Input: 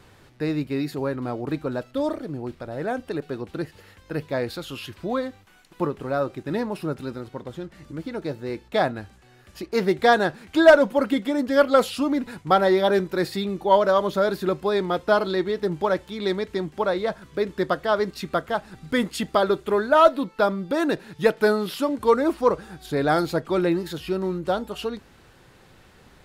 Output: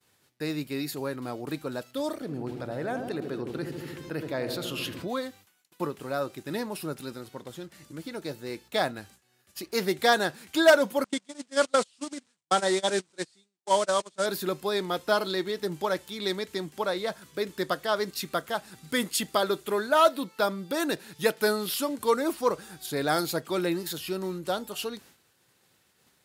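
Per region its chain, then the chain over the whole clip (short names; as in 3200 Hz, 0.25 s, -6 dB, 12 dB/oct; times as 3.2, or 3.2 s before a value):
2.21–5.08 high shelf 4300 Hz -11.5 dB + darkening echo 76 ms, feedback 76%, low-pass 920 Hz, level -7 dB + fast leveller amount 50%
11.04–14.26 delta modulation 64 kbps, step -28.5 dBFS + Chebyshev low-pass 8700 Hz, order 4 + gate -22 dBFS, range -31 dB
whole clip: HPF 110 Hz 12 dB/oct; expander -45 dBFS; pre-emphasis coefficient 0.8; gain +7.5 dB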